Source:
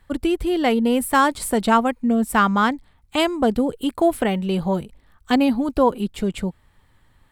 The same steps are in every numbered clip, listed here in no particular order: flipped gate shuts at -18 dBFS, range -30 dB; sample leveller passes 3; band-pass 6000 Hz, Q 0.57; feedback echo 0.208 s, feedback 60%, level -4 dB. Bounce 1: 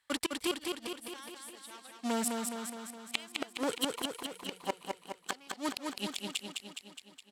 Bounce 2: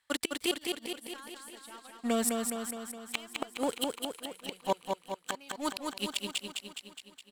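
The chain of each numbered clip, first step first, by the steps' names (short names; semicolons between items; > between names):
sample leveller > band-pass > flipped gate > feedback echo; band-pass > sample leveller > flipped gate > feedback echo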